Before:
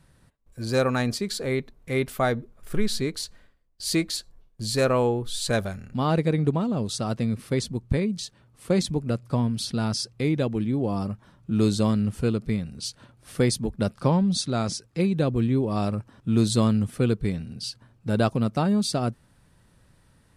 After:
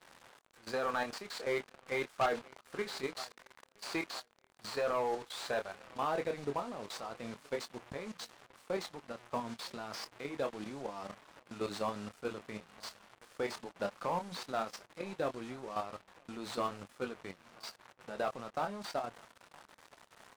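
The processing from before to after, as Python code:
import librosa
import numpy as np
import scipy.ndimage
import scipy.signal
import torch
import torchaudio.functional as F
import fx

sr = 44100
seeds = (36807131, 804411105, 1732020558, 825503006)

y = fx.delta_mod(x, sr, bps=64000, step_db=-36.5)
y = fx.tilt_eq(y, sr, slope=-4.0)
y = fx.rider(y, sr, range_db=4, speed_s=2.0)
y = scipy.signal.sosfilt(scipy.signal.cheby1(2, 1.0, [910.0, 9100.0], 'bandpass', fs=sr, output='sos'), y)
y = fx.level_steps(y, sr, step_db=11)
y = fx.chorus_voices(y, sr, voices=2, hz=0.12, base_ms=25, depth_ms=4.4, mix_pct=30)
y = fx.echo_feedback(y, sr, ms=970, feedback_pct=60, wet_db=-23.0)
y = fx.leveller(y, sr, passes=3)
y = F.gain(torch.from_numpy(y), -7.5).numpy()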